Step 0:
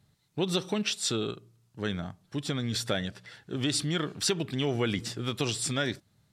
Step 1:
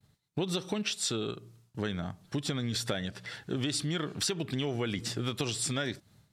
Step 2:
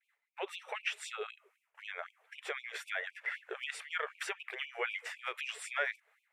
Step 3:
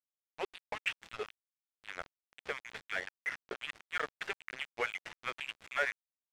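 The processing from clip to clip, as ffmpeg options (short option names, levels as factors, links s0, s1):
-af "agate=range=0.0224:threshold=0.001:ratio=3:detection=peak,acompressor=threshold=0.0141:ratio=4,volume=2.11"
-af "highshelf=f=3100:t=q:w=3:g=-12,afftfilt=real='re*gte(b*sr/1024,380*pow(2300/380,0.5+0.5*sin(2*PI*3.9*pts/sr)))':imag='im*gte(b*sr/1024,380*pow(2300/380,0.5+0.5*sin(2*PI*3.9*pts/sr)))':win_size=1024:overlap=0.75"
-af "aeval=exprs='val(0)*gte(abs(val(0)),0.0133)':c=same,adynamicsmooth=sensitivity=4.5:basefreq=3100,volume=1.26"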